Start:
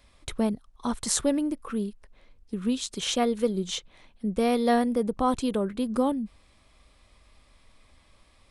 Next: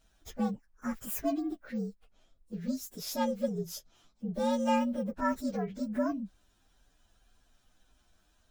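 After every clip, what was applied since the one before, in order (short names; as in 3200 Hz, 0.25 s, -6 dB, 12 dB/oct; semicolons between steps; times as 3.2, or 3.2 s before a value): inharmonic rescaling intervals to 120%; gain -4.5 dB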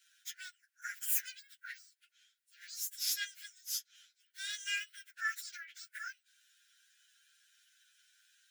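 Chebyshev high-pass 1400 Hz, order 10; gain +6 dB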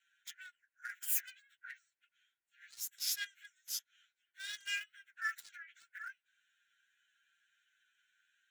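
Wiener smoothing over 9 samples; gain -1 dB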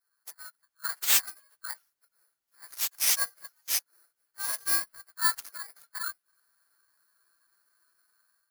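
FFT order left unsorted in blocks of 16 samples; sample leveller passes 1; AGC gain up to 8.5 dB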